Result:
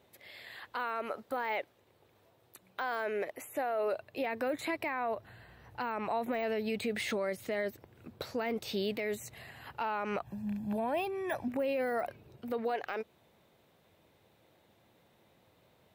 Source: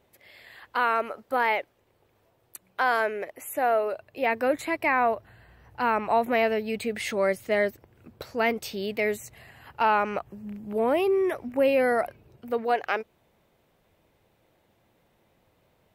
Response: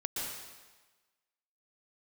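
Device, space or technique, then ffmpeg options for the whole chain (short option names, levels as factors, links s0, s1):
broadcast voice chain: -filter_complex "[0:a]highpass=77,deesser=0.9,acompressor=threshold=0.0501:ratio=4,equalizer=f=3800:t=o:w=0.32:g=5,alimiter=level_in=1.12:limit=0.0631:level=0:latency=1:release=27,volume=0.891,asettb=1/sr,asplit=3[s0][s1][s2];[s0]atrim=end=10.244[s3];[s1]atrim=start=10.24:end=11.48,asetpts=PTS-STARTPTS,afade=t=in:d=0.004:c=qsin,afade=t=out:st=1.236:d=0.004:c=qsin,aecho=1:1:1.2:0.67,atrim=end_sample=54684[s4];[s2]atrim=start=11.476[s5];[s3][s4]acrossfade=d=0.004:c1=hsin:c2=qsin[s6];[s6][s5]acrossfade=d=0.004:c1=qsin:c2=hsin"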